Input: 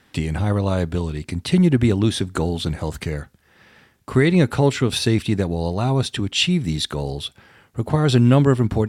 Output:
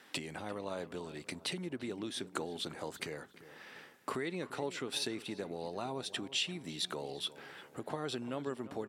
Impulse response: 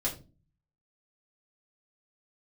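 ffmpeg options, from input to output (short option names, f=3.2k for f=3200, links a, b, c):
-filter_complex "[0:a]acompressor=threshold=-32dB:ratio=5,highpass=320,asplit=2[a][b];[b]adelay=346,lowpass=f=2.2k:p=1,volume=-15dB,asplit=2[c][d];[d]adelay=346,lowpass=f=2.2k:p=1,volume=0.5,asplit=2[e][f];[f]adelay=346,lowpass=f=2.2k:p=1,volume=0.5,asplit=2[g][h];[h]adelay=346,lowpass=f=2.2k:p=1,volume=0.5,asplit=2[i][j];[j]adelay=346,lowpass=f=2.2k:p=1,volume=0.5[k];[a][c][e][g][i][k]amix=inputs=6:normalize=0,volume=-1dB"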